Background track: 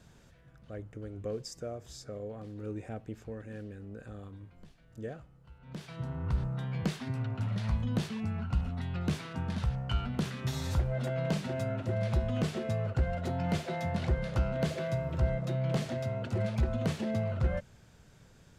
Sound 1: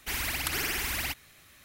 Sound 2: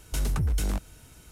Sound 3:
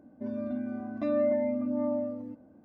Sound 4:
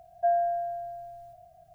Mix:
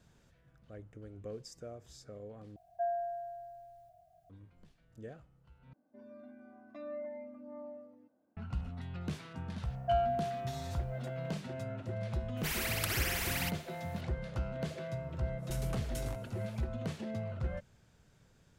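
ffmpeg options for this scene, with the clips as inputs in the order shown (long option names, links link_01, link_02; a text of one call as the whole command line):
ffmpeg -i bed.wav -i cue0.wav -i cue1.wav -i cue2.wav -i cue3.wav -filter_complex "[4:a]asplit=2[link_01][link_02];[0:a]volume=-7dB[link_03];[3:a]highpass=frequency=670:poles=1[link_04];[2:a]aecho=1:1:7.2:0.39[link_05];[link_03]asplit=3[link_06][link_07][link_08];[link_06]atrim=end=2.564[link_09];[link_01]atrim=end=1.74,asetpts=PTS-STARTPTS,volume=-9.5dB[link_10];[link_07]atrim=start=4.296:end=5.734[link_11];[link_04]atrim=end=2.64,asetpts=PTS-STARTPTS,volume=-11.5dB[link_12];[link_08]atrim=start=8.366[link_13];[link_02]atrim=end=1.74,asetpts=PTS-STARTPTS,volume=-5.5dB,afade=type=in:duration=0.004:curve=hsin,afade=type=out:start_time=1.736:duration=0.004:curve=hsin,adelay=9650[link_14];[1:a]atrim=end=1.64,asetpts=PTS-STARTPTS,volume=-4dB,afade=type=in:duration=0.004:curve=hsin,afade=type=out:start_time=1.636:duration=0.004:curve=hsin,adelay=12370[link_15];[link_05]atrim=end=1.31,asetpts=PTS-STARTPTS,volume=-11dB,afade=type=in:duration=0.1,afade=type=out:start_time=1.21:duration=0.1,adelay=15370[link_16];[link_09][link_10]acrossfade=duration=0.004:curve1=hsin:curve2=hsin[link_17];[link_17][link_11]acrossfade=duration=0.004:curve1=hsin:curve2=hsin[link_18];[link_18][link_12]acrossfade=duration=0.004:curve1=hsin:curve2=hsin[link_19];[link_19][link_13]acrossfade=duration=0.004:curve1=hsin:curve2=hsin[link_20];[link_20][link_14][link_15][link_16]amix=inputs=4:normalize=0" out.wav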